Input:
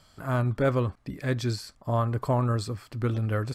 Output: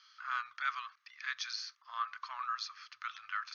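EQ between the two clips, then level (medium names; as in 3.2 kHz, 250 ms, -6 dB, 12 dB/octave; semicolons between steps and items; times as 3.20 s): elliptic high-pass 1.2 kHz, stop band 60 dB; brick-wall FIR low-pass 6.7 kHz; 0.0 dB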